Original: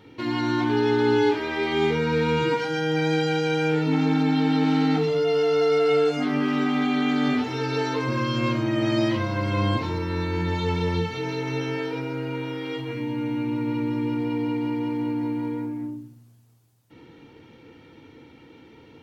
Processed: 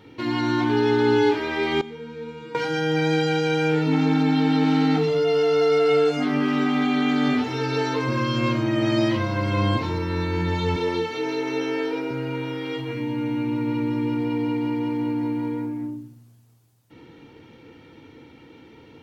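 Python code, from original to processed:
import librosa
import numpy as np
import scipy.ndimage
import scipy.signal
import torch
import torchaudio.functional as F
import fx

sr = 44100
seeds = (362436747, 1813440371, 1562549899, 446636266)

y = fx.comb_fb(x, sr, f0_hz=230.0, decay_s=1.2, harmonics='all', damping=0.0, mix_pct=90, at=(1.81, 2.55))
y = fx.low_shelf_res(y, sr, hz=210.0, db=-12.0, q=1.5, at=(10.76, 12.11))
y = F.gain(torch.from_numpy(y), 1.5).numpy()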